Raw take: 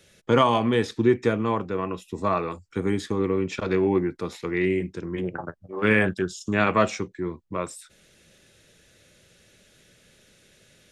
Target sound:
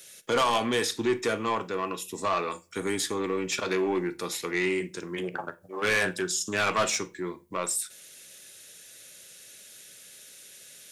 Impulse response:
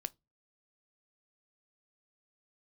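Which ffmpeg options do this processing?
-filter_complex "[0:a]aemphasis=mode=production:type=riaa,asoftclip=type=tanh:threshold=0.0944[s0];[1:a]atrim=start_sample=2205,asetrate=25137,aresample=44100[s1];[s0][s1]afir=irnorm=-1:irlink=0"

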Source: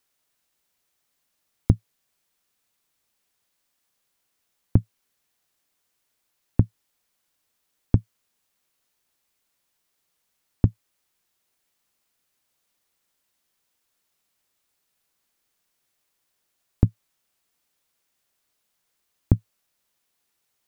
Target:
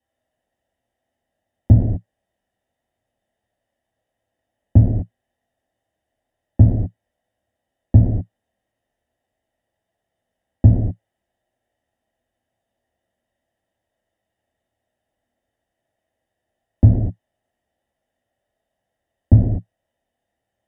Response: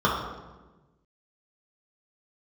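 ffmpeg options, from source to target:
-filter_complex "[1:a]atrim=start_sample=2205,afade=t=out:st=0.19:d=0.01,atrim=end_sample=8820,asetrate=23814,aresample=44100[s0];[0:a][s0]afir=irnorm=-1:irlink=0,volume=0.15"

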